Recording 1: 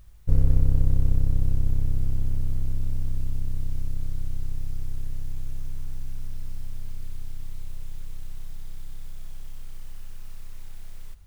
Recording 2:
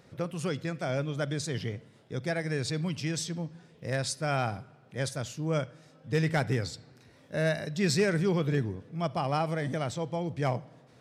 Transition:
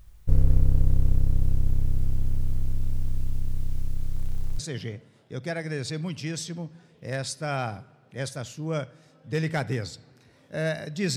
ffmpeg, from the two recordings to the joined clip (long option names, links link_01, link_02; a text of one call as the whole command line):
ffmpeg -i cue0.wav -i cue1.wav -filter_complex "[0:a]asettb=1/sr,asplit=3[link_01][link_02][link_03];[link_01]atrim=end=4.144[link_04];[link_02]atrim=start=4.14:end=4.59,asetpts=PTS-STARTPTS,afade=type=in:duration=0.004:curve=qsin,afade=type=out:start_time=0.446:duration=0.004:curve=qsin,aeval=exprs='val(0)+0.5*0.0133*sgn(val(0))':channel_layout=same[link_05];[link_03]atrim=start=4.586[link_06];[link_04][link_05]acrossfade=duration=0.004:curve1=hsin:curve2=qsin[link_07];[link_07][link_06]acrossfade=duration=0.004:curve1=qsin:curve2=hsin,apad=whole_dur=11.16,atrim=end=11.16,atrim=end=4.592[link_08];[1:a]atrim=start=1.388:end=7.96[link_09];[link_08][link_09]acrossfade=duration=0.004:curve1=hsin:curve2=hsin" out.wav